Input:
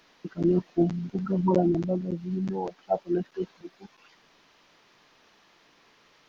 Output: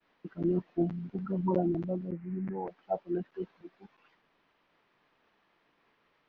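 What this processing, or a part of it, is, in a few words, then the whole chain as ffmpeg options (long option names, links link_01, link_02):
hearing-loss simulation: -filter_complex "[0:a]asettb=1/sr,asplit=3[link_01][link_02][link_03];[link_01]atrim=end=2.114[link_04];[link_02]atrim=start=2.11:end=2.68,asetpts=PTS-STARTPTS,afade=type=in:duration=0.004:curve=qsin,afade=type=out:start_time=0.566:duration=0.004:curve=qsin,highshelf=frequency=2700:width_type=q:width=3:gain=-9[link_05];[link_03]atrim=start=2.676[link_06];[link_04][link_05]acrossfade=duration=0.004:curve1=hsin:curve2=qsin[link_07];[link_07][link_06]acrossfade=duration=0.004:curve1=qsin:curve2=hsin,lowpass=2600,agate=range=-33dB:threshold=-58dB:ratio=3:detection=peak,volume=-6dB"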